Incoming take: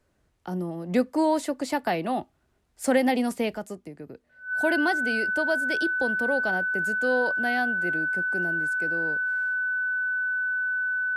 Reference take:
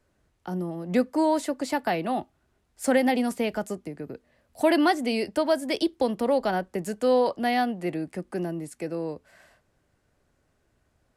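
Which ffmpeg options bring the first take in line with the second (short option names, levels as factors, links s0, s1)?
-af "bandreject=f=1500:w=30,asetnsamples=n=441:p=0,asendcmd='3.54 volume volume 4.5dB',volume=1"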